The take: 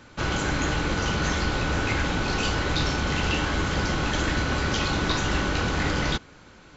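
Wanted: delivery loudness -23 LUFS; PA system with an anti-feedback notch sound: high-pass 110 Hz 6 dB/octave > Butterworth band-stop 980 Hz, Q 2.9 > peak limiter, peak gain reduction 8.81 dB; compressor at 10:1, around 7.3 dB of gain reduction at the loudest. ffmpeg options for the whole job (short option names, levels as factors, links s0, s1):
-af "acompressor=threshold=0.0398:ratio=10,highpass=f=110:p=1,asuperstop=centerf=980:order=8:qfactor=2.9,volume=5.62,alimiter=limit=0.188:level=0:latency=1"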